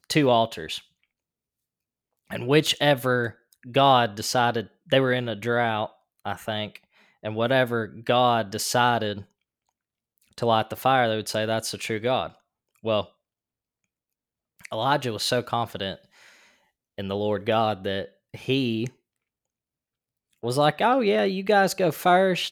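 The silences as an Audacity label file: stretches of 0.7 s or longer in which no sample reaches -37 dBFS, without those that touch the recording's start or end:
0.790000	2.300000	silence
9.220000	10.380000	silence
13.040000	14.600000	silence
15.950000	16.980000	silence
18.880000	20.440000	silence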